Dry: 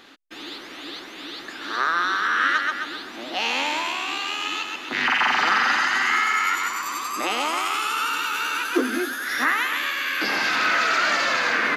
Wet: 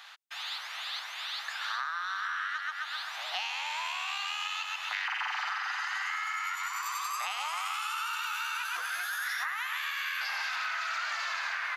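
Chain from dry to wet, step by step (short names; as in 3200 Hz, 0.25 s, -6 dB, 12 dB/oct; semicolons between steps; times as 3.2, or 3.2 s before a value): steep high-pass 770 Hz 36 dB/oct; compressor 10:1, threshold -31 dBFS, peak gain reduction 15 dB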